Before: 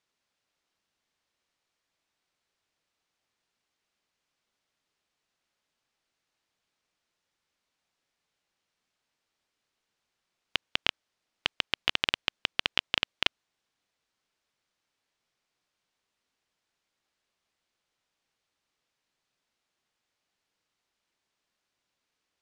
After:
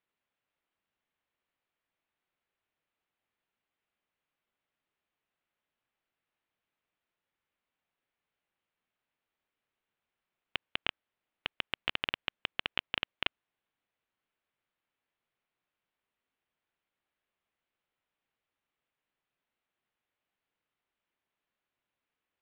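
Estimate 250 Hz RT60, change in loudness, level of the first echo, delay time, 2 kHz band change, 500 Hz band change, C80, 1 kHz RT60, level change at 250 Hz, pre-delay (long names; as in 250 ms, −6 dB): no reverb audible, −6.5 dB, no echo audible, no echo audible, −5.0 dB, −4.5 dB, no reverb audible, no reverb audible, −4.5 dB, no reverb audible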